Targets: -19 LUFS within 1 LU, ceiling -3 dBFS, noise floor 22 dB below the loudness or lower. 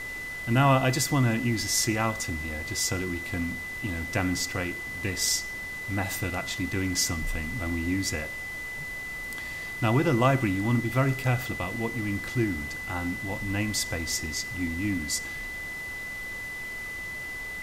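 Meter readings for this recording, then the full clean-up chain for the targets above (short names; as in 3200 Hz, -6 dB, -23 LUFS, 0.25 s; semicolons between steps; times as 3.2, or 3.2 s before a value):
steady tone 2000 Hz; tone level -34 dBFS; noise floor -36 dBFS; noise floor target -50 dBFS; loudness -28.0 LUFS; peak -11.0 dBFS; loudness target -19.0 LUFS
-> notch 2000 Hz, Q 30; denoiser 14 dB, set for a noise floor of -36 dBFS; gain +9 dB; limiter -3 dBFS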